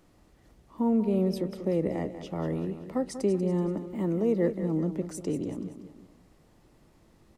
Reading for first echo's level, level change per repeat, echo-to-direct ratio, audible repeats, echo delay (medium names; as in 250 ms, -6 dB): -11.0 dB, -6.5 dB, -10.0 dB, 3, 190 ms